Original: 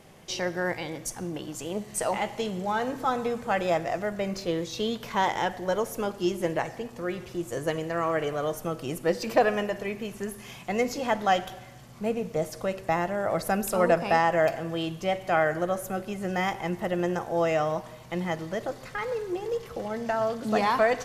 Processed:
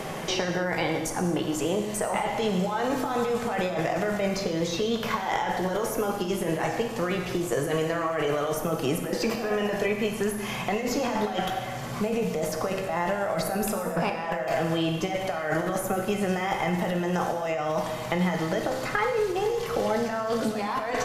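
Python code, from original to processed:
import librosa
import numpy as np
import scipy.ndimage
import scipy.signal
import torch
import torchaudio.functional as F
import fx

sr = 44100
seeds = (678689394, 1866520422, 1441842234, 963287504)

y = fx.peak_eq(x, sr, hz=970.0, db=4.0, octaves=2.9)
y = fx.over_compress(y, sr, threshold_db=-29.0, ratio=-1.0)
y = fx.rev_gated(y, sr, seeds[0], gate_ms=290, shape='falling', drr_db=3.0)
y = fx.band_squash(y, sr, depth_pct=70)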